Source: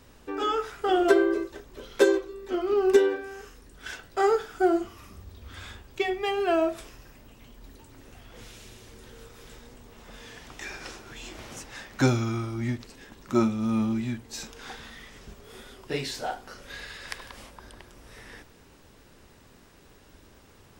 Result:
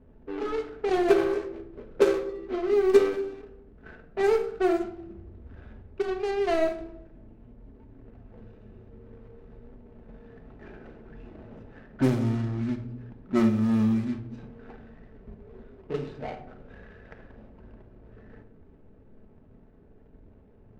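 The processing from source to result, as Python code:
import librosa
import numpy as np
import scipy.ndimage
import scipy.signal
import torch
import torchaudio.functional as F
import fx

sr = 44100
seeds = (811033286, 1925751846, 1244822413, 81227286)

y = scipy.ndimage.median_filter(x, 41, mode='constant')
y = fx.room_shoebox(y, sr, seeds[0], volume_m3=1900.0, walls='furnished', distance_m=1.5)
y = fx.env_lowpass(y, sr, base_hz=2000.0, full_db=-19.5)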